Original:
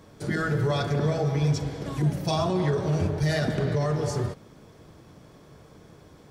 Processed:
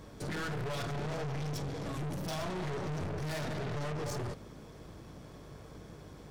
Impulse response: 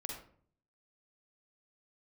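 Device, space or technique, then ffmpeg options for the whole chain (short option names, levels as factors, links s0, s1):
valve amplifier with mains hum: -af "aeval=exprs='(tanh(70.8*val(0)+0.4)-tanh(0.4))/70.8':c=same,aeval=exprs='val(0)+0.00141*(sin(2*PI*50*n/s)+sin(2*PI*2*50*n/s)/2+sin(2*PI*3*50*n/s)/3+sin(2*PI*4*50*n/s)/4+sin(2*PI*5*50*n/s)/5)':c=same,volume=1.19"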